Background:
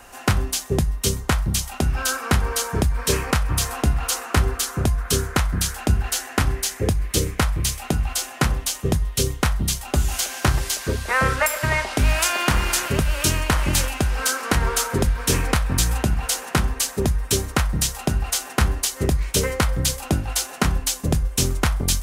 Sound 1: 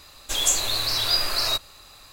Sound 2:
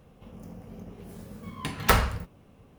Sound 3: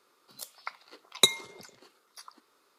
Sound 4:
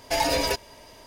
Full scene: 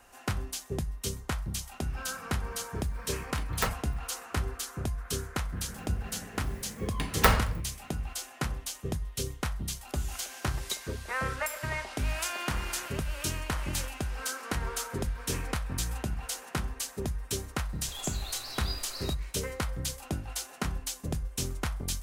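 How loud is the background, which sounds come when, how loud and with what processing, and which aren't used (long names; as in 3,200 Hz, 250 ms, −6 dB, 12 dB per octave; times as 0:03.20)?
background −12.5 dB
0:01.73: mix in 2 −9 dB + reverb reduction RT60 0.69 s
0:05.35: mix in 2 −1 dB
0:09.48: mix in 3 −16 dB
0:17.57: mix in 1 −17 dB
not used: 4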